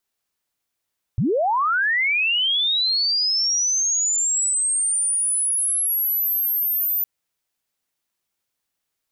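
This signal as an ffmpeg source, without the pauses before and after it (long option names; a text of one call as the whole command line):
ffmpeg -f lavfi -i "aevalsrc='pow(10,(-17-2*t/5.86)/20)*sin(2*PI*(88*t+13912*t*t/(2*5.86)))':duration=5.86:sample_rate=44100" out.wav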